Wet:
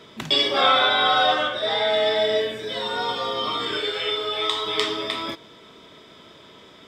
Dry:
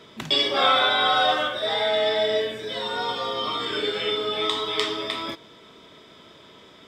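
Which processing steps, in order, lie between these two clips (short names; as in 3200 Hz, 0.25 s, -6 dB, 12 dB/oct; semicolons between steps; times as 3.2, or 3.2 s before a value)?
0.61–1.9 LPF 7600 Hz 12 dB/oct; 3.77–4.66 bell 210 Hz -13.5 dB 1.1 oct; gain +1.5 dB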